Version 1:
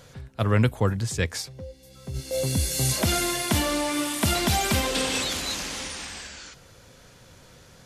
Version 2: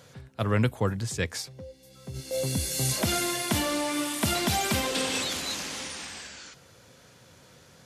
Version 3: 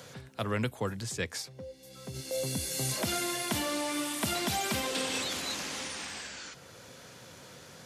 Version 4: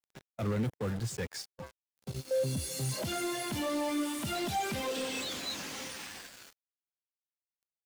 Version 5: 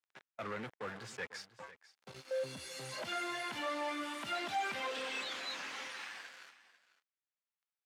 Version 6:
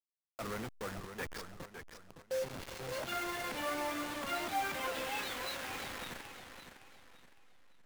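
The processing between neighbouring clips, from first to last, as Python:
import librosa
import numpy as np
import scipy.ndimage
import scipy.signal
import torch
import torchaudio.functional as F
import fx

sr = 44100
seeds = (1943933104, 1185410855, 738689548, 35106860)

y1 = scipy.signal.sosfilt(scipy.signal.butter(2, 95.0, 'highpass', fs=sr, output='sos'), x)
y1 = y1 * 10.0 ** (-2.5 / 20.0)
y2 = fx.low_shelf(y1, sr, hz=89.0, db=-10.0)
y2 = fx.band_squash(y2, sr, depth_pct=40)
y2 = y2 * 10.0 ** (-4.0 / 20.0)
y3 = fx.quant_companded(y2, sr, bits=2)
y3 = fx.spectral_expand(y3, sr, expansion=1.5)
y4 = fx.bandpass_q(y3, sr, hz=1600.0, q=0.91)
y4 = y4 + 10.0 ** (-17.0 / 20.0) * np.pad(y4, (int(496 * sr / 1000.0), 0))[:len(y4)]
y4 = y4 * 10.0 ** (2.0 / 20.0)
y5 = fx.delta_hold(y4, sr, step_db=-39.0)
y5 = fx.echo_warbled(y5, sr, ms=561, feedback_pct=34, rate_hz=2.8, cents=115, wet_db=-8.5)
y5 = y5 * 10.0 ** (1.0 / 20.0)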